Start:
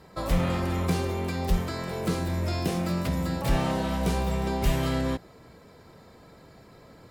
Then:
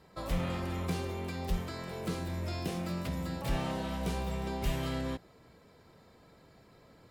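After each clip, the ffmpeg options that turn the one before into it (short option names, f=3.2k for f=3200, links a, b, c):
-af "equalizer=f=3k:w=1.5:g=2.5,volume=-8dB"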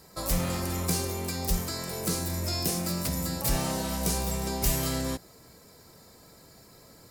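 -af "aexciter=amount=4.9:drive=5.9:freq=4.6k,volume=4dB"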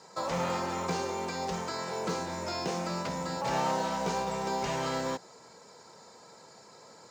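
-filter_complex "[0:a]acrossover=split=3700[a][b];[b]acompressor=threshold=-44dB:ratio=4:attack=1:release=60[c];[a][c]amix=inputs=2:normalize=0,highpass=210,equalizer=f=290:t=q:w=4:g=-6,equalizer=f=490:t=q:w=4:g=4,equalizer=f=900:t=q:w=4:g=10,equalizer=f=1.4k:t=q:w=4:g=4,equalizer=f=6.7k:t=q:w=4:g=6,lowpass=f=7k:w=0.5412,lowpass=f=7k:w=1.3066,acrusher=bits=8:mode=log:mix=0:aa=0.000001"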